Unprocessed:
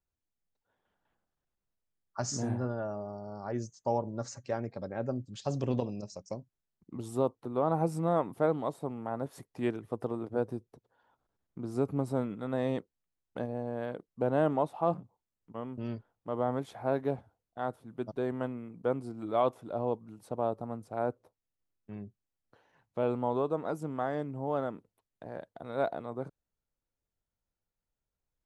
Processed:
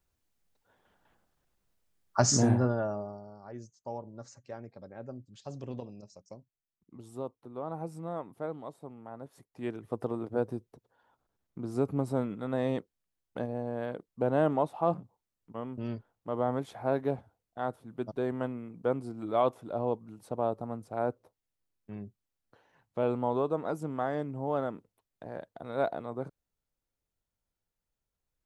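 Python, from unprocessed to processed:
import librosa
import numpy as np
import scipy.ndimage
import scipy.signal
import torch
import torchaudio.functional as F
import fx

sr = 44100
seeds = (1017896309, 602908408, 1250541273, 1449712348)

y = fx.gain(x, sr, db=fx.line((2.36, 10.0), (3.0, 2.0), (3.39, -9.0), (9.45, -9.0), (9.93, 1.0)))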